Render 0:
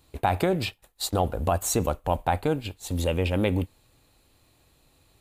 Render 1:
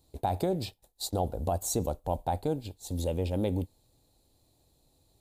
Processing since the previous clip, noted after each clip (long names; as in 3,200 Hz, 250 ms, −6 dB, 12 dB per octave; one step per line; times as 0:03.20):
flat-topped bell 1,800 Hz −12 dB
level −5 dB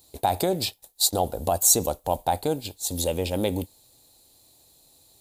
spectral tilt +2.5 dB per octave
level +8 dB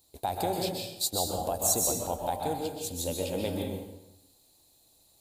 dense smooth reverb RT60 0.93 s, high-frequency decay 0.75×, pre-delay 115 ms, DRR 0 dB
level −8.5 dB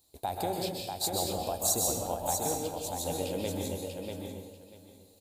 repeating echo 641 ms, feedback 19%, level −5 dB
level −2.5 dB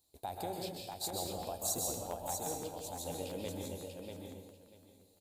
regular buffer underruns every 0.17 s, samples 512, repeat, from 0:00.74
level −7.5 dB